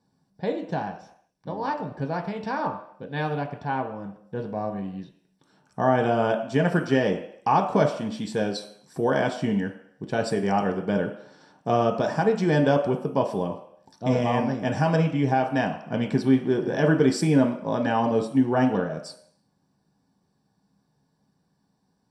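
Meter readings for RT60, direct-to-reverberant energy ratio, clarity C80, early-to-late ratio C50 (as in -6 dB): not exponential, 2.5 dB, 12.0 dB, 9.0 dB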